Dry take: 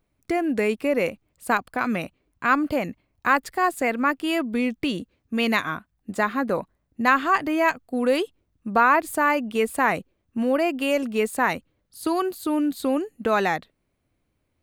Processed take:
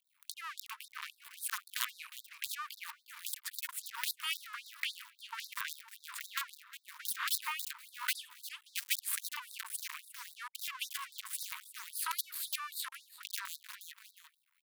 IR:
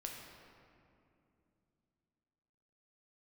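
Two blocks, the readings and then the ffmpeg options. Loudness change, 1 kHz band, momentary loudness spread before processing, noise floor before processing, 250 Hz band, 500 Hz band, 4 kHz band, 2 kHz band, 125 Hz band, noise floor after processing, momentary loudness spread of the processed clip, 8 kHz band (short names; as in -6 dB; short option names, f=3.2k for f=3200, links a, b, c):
-16.0 dB, -22.5 dB, 11 LU, -74 dBFS, under -40 dB, under -40 dB, -4.0 dB, -16.5 dB, under -40 dB, -76 dBFS, 12 LU, +0.5 dB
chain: -filter_complex "[0:a]acrossover=split=110[a][b];[b]aeval=exprs='(mod(6.31*val(0)+1,2)-1)/6.31':c=same[c];[a][c]amix=inputs=2:normalize=0,bass=f=250:g=10,treble=f=4k:g=2,asplit=2[d][e];[e]aecho=0:1:357|714:0.0794|0.0214[f];[d][f]amix=inputs=2:normalize=0,acompressor=threshold=-21dB:ratio=6,equalizer=f=6.1k:t=o:w=0.97:g=-10,acrossover=split=280[g][h];[h]acompressor=threshold=-42dB:ratio=2[i];[g][i]amix=inputs=2:normalize=0,aeval=exprs='max(val(0),0)':c=same,afftfilt=real='re*gte(b*sr/1024,870*pow(3700/870,0.5+0.5*sin(2*PI*3.7*pts/sr)))':imag='im*gte(b*sr/1024,870*pow(3700/870,0.5+0.5*sin(2*PI*3.7*pts/sr)))':win_size=1024:overlap=0.75,volume=11dB"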